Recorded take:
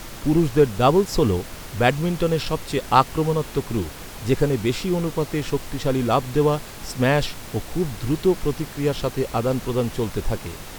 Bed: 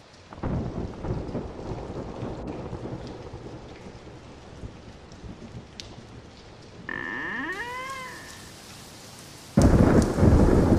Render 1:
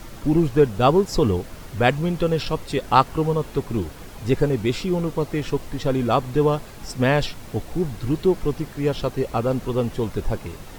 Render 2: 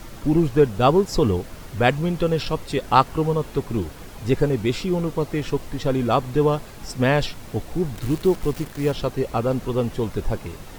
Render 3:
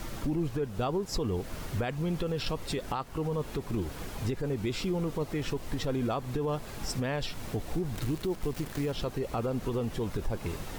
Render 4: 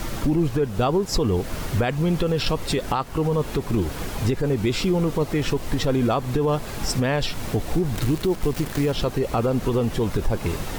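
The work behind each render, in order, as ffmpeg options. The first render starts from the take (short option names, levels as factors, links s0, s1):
-af "afftdn=nr=7:nf=-38"
-filter_complex "[0:a]asettb=1/sr,asplit=3[s0][s1][s2];[s0]atrim=end=7.954[s3];[s1]atrim=start=7.95:end=8.92,asetpts=PTS-STARTPTS,afade=t=in:d=0.004:c=qsin,afade=t=out:st=0.966:d=0.004:c=qsin,acrusher=bits=7:dc=4:mix=0:aa=0.000001[s4];[s2]atrim=start=8.916[s5];[s3][s4]acrossfade=d=0.004:c1=hsin:c2=qsin[s6];[s6][s5]acrossfade=d=0.004:c1=qsin:c2=hsin"
-af "acompressor=threshold=0.0501:ratio=4,alimiter=limit=0.075:level=0:latency=1:release=38"
-af "volume=2.99"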